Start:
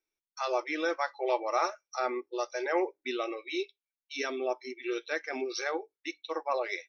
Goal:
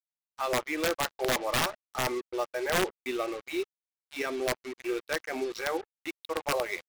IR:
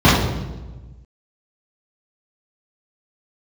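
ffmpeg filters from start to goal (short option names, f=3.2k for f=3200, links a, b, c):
-af "adynamicsmooth=sensitivity=4:basefreq=2k,aeval=exprs='(mod(11.9*val(0)+1,2)-1)/11.9':c=same,acrusher=bits=6:mix=0:aa=0.5,volume=2dB"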